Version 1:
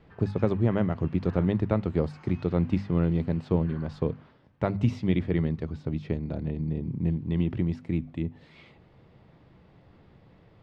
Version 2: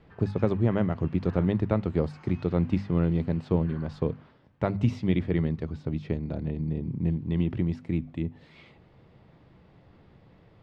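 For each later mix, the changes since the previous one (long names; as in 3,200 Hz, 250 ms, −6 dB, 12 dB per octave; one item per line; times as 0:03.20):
nothing changed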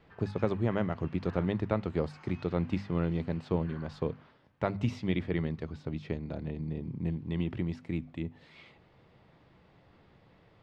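master: add low-shelf EQ 480 Hz −7 dB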